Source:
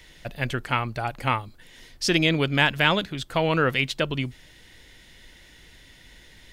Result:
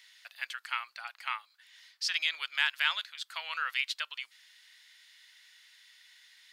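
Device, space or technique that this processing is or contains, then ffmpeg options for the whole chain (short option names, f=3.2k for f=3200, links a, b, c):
headphones lying on a table: -filter_complex "[0:a]asettb=1/sr,asplit=3[a][b][c];[a]atrim=end=0.944[d];[b]atrim=start=0.94:end=2.2,asetpts=PTS-STARTPTS,afade=t=in:d=0.004:c=qsin,afade=t=out:st=1.256:d=0.004:c=qsin,equalizer=f=11k:t=o:w=1.3:g=-5[e];[c]atrim=start=2.196[f];[d][e]acrossfade=d=0.004:c1=hsin:c2=qsin[g];[g][f]acrossfade=d=0.004:c1=qsin:c2=hsin,highpass=f=1.2k:w=0.5412,highpass=f=1.2k:w=1.3066,equalizer=f=4.5k:t=o:w=0.51:g=5.5,volume=-7dB"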